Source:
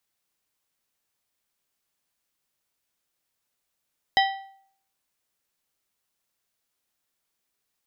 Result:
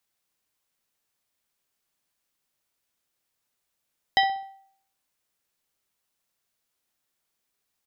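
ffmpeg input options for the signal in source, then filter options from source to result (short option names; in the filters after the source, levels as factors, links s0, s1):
-f lavfi -i "aevalsrc='0.158*pow(10,-3*t/0.61)*sin(2*PI*779*t)+0.112*pow(10,-3*t/0.463)*sin(2*PI*1947.5*t)+0.0794*pow(10,-3*t/0.402)*sin(2*PI*3116*t)+0.0562*pow(10,-3*t/0.376)*sin(2*PI*3895*t)+0.0398*pow(10,-3*t/0.348)*sin(2*PI*5063.5*t)':d=1.55:s=44100"
-filter_complex "[0:a]asplit=2[s0][s1];[s1]adelay=64,lowpass=f=2000:p=1,volume=0.251,asplit=2[s2][s3];[s3]adelay=64,lowpass=f=2000:p=1,volume=0.44,asplit=2[s4][s5];[s5]adelay=64,lowpass=f=2000:p=1,volume=0.44,asplit=2[s6][s7];[s7]adelay=64,lowpass=f=2000:p=1,volume=0.44[s8];[s0][s2][s4][s6][s8]amix=inputs=5:normalize=0"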